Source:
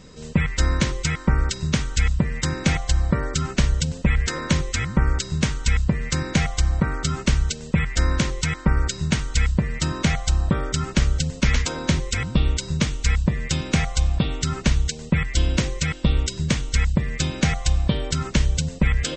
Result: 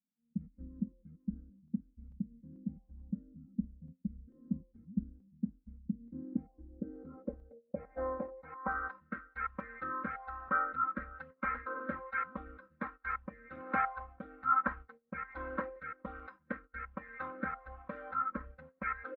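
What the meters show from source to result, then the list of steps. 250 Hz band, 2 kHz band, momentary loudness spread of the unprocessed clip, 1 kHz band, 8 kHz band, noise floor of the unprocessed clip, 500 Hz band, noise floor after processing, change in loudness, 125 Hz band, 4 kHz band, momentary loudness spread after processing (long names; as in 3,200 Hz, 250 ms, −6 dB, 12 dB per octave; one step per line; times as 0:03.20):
−16.0 dB, −13.0 dB, 2 LU, −4.0 dB, below −40 dB, −37 dBFS, −13.5 dB, −74 dBFS, −16.5 dB, −27.5 dB, below −40 dB, 14 LU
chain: running median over 15 samples
low-pass filter 3,200 Hz 12 dB per octave
first difference
noise that follows the level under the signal 11 dB
comb filter 3.8 ms, depth 94%
noise gate −54 dBFS, range −14 dB
rotating-speaker cabinet horn 6.3 Hz, later 1.2 Hz, at 0:01.30
low-pass filter sweep 200 Hz → 1,300 Hz, 0:05.77–0:09.11
regular buffer underruns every 0.44 s, samples 128, zero, from 0:00.80
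every bin expanded away from the loudest bin 1.5 to 1
level +9 dB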